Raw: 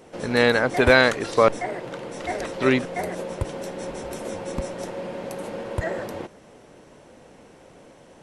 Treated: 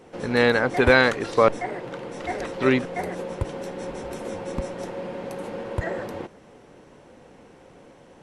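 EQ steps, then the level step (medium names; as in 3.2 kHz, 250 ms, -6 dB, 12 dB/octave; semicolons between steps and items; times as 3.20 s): treble shelf 4.8 kHz -7 dB; band-stop 630 Hz, Q 12; 0.0 dB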